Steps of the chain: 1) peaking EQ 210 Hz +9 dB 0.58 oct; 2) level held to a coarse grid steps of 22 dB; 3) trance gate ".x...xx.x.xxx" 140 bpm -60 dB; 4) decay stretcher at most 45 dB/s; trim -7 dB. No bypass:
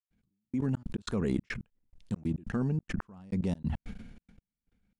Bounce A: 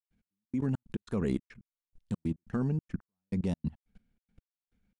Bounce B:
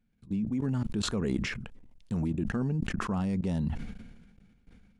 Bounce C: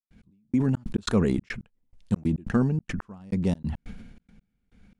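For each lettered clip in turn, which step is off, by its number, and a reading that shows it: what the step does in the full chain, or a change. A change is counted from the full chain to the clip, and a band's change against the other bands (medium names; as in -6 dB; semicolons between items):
4, momentary loudness spread change -2 LU; 3, 4 kHz band +6.5 dB; 2, momentary loudness spread change +4 LU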